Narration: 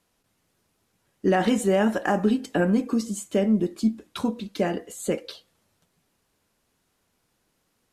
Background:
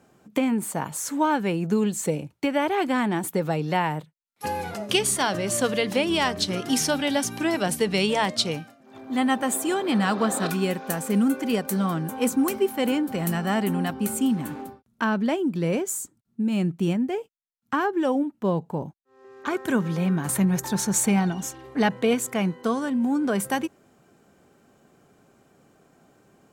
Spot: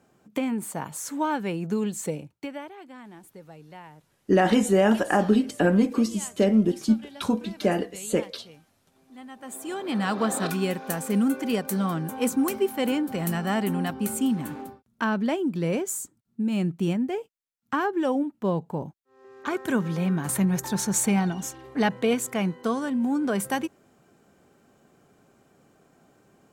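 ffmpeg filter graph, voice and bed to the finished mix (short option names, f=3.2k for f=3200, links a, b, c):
-filter_complex "[0:a]adelay=3050,volume=1.5dB[a];[1:a]volume=15.5dB,afade=t=out:st=2.05:d=0.69:silence=0.141254,afade=t=in:st=9.36:d=0.89:silence=0.105925[b];[a][b]amix=inputs=2:normalize=0"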